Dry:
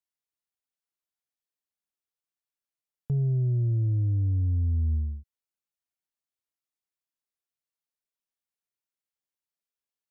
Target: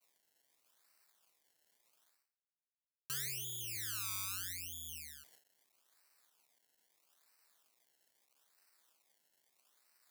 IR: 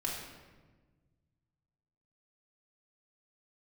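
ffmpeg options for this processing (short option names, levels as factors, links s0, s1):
-af "areverse,acompressor=mode=upward:threshold=0.0282:ratio=2.5,areverse,agate=range=0.0224:threshold=0.00316:ratio=3:detection=peak,acrusher=samples=25:mix=1:aa=0.000001:lfo=1:lforange=25:lforate=0.78,aderivative,volume=1.68"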